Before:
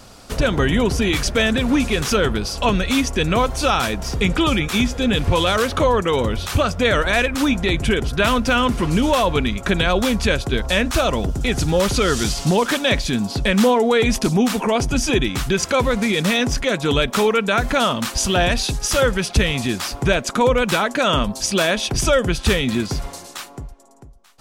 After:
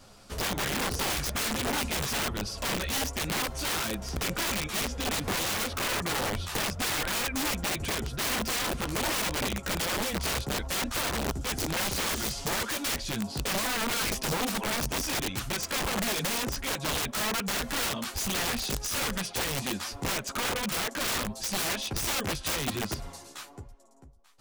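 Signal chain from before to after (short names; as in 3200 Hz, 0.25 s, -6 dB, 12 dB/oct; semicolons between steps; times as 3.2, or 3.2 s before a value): chorus voices 2, 1.2 Hz, delay 12 ms, depth 3 ms; wrapped overs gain 17.5 dB; gain -7 dB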